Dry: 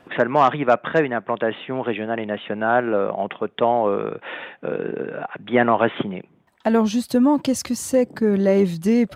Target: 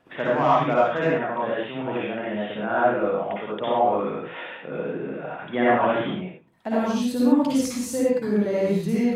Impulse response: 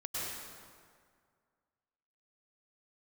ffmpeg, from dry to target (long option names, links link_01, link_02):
-filter_complex "[1:a]atrim=start_sample=2205,afade=type=out:start_time=0.43:duration=0.01,atrim=end_sample=19404,asetrate=83790,aresample=44100[link_01];[0:a][link_01]afir=irnorm=-1:irlink=0"